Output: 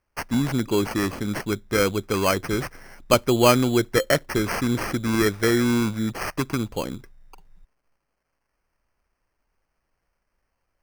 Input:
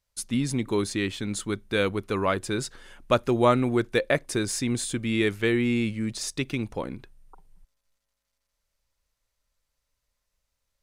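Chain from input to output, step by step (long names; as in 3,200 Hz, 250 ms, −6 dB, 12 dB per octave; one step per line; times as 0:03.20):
decimation without filtering 12×
level +3.5 dB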